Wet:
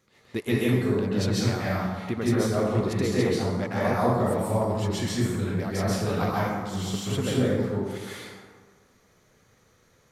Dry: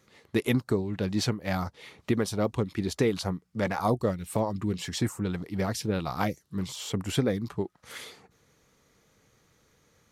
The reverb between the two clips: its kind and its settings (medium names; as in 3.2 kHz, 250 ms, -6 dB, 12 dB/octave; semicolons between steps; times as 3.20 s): plate-style reverb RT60 1.5 s, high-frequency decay 0.5×, pre-delay 120 ms, DRR -7.5 dB; trim -4.5 dB